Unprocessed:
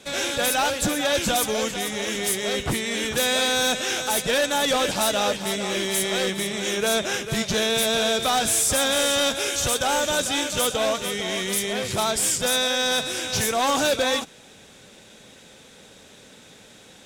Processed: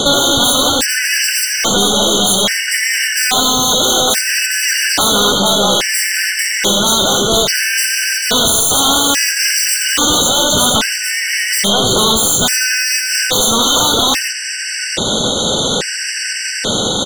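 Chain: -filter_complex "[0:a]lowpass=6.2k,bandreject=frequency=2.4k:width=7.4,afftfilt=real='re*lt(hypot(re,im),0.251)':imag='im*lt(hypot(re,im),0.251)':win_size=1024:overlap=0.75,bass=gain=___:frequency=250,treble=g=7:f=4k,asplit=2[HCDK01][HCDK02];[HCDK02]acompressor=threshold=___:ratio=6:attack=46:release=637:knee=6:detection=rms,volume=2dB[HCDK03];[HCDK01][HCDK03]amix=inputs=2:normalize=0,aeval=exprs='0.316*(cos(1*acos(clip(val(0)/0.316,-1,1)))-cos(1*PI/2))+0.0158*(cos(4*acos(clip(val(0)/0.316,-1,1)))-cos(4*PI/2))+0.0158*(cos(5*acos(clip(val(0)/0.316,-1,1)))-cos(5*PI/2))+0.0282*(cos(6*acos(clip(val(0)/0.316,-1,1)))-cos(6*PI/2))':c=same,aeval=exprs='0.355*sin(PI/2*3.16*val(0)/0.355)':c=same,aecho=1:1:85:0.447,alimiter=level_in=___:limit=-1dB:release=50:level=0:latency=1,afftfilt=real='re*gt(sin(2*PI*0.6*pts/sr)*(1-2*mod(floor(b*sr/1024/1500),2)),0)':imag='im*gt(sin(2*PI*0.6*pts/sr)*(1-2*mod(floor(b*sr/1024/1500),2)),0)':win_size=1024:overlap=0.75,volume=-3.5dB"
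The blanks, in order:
-1, -39dB, 16dB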